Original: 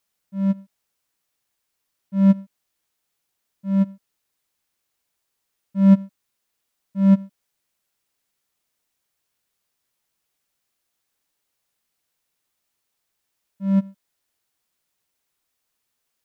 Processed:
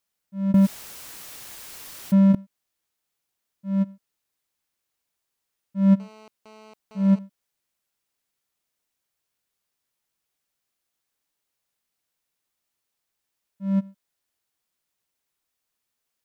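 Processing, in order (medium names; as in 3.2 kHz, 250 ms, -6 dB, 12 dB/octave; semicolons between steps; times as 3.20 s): 0.54–2.35 s: level flattener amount 100%; 6.00–7.19 s: mobile phone buzz -44 dBFS; trim -4 dB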